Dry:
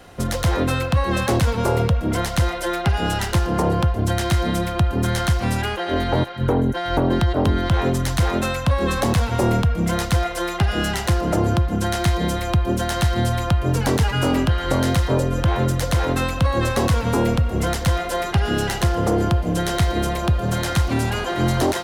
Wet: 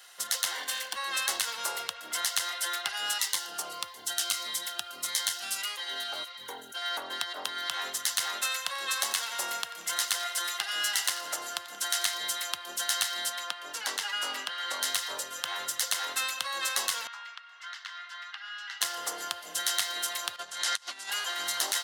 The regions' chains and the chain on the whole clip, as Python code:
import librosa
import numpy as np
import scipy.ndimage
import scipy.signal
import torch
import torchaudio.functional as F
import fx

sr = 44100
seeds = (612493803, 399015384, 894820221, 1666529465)

y = fx.chain(x, sr, fx.lower_of_two(delay_ms=3.9),
    fx.notch_comb(f0_hz=1300.0), at=(0.53, 0.96))
y = fx.chain(y, sr, fx.notch(hz=1700.0, q=12.0),
    fx.quant_float(bits=8),
    fx.notch_cascade(direction='falling', hz=1.6), at=(3.18, 6.82))
y = fx.chain(y, sr, fx.low_shelf(hz=140.0, db=-6.0),
    fx.echo_feedback(ms=90, feedback_pct=53, wet_db=-17.5), at=(8.36, 12.14))
y = fx.chain(y, sr, fx.highpass(hz=170.0, slope=24),
    fx.high_shelf(hz=7000.0, db=-10.5), at=(13.3, 14.82))
y = fx.chain(y, sr, fx.ladder_highpass(hz=1000.0, resonance_pct=30),
    fx.air_absorb(metres=210.0), at=(17.07, 18.81))
y = fx.chain(y, sr, fx.lowpass(hz=8500.0, slope=12),
    fx.over_compress(threshold_db=-25.0, ratio=-0.5), at=(20.36, 21.1))
y = scipy.signal.sosfilt(scipy.signal.butter(2, 1300.0, 'highpass', fs=sr, output='sos'), y)
y = fx.high_shelf(y, sr, hz=2200.0, db=11.0)
y = fx.notch(y, sr, hz=2400.0, q=7.4)
y = F.gain(torch.from_numpy(y), -7.5).numpy()